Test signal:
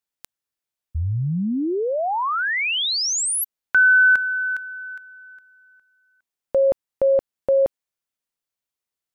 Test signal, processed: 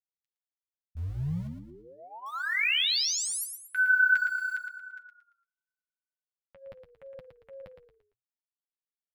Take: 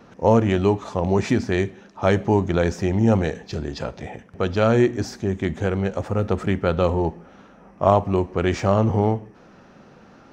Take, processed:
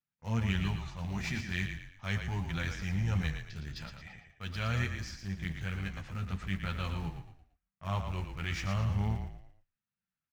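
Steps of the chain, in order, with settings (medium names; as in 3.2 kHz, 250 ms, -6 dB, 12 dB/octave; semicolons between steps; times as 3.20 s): gate -36 dBFS, range -33 dB; FFT filter 180 Hz 0 dB, 310 Hz -17 dB, 520 Hz -18 dB, 2.1 kHz +6 dB, 4.9 kHz +4 dB, 8.2 kHz -1 dB; transient shaper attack -7 dB, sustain -2 dB; in parallel at -11 dB: small samples zeroed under -26.5 dBFS; on the sum: flange 0.42 Hz, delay 6.7 ms, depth 7.4 ms, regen -23%; on a send: frequency-shifting echo 114 ms, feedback 38%, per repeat -31 Hz, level -7 dB; on the sum: trim -8 dB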